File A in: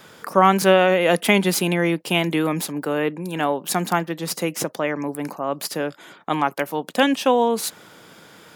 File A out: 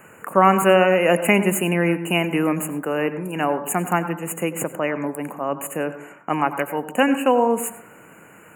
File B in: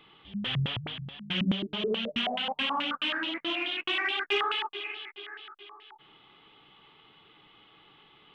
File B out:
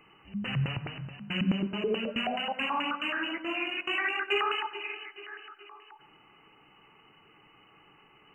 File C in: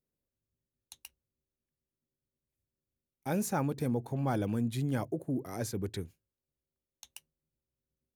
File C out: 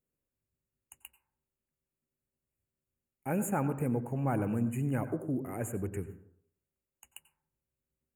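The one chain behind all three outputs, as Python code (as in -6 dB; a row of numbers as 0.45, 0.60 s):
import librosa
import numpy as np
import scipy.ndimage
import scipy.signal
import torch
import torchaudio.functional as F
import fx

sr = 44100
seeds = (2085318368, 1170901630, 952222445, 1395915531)

y = fx.brickwall_bandstop(x, sr, low_hz=3000.0, high_hz=6600.0)
y = fx.rev_plate(y, sr, seeds[0], rt60_s=0.63, hf_ratio=0.25, predelay_ms=80, drr_db=11.5)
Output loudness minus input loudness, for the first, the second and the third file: 0.0, -1.0, +0.5 LU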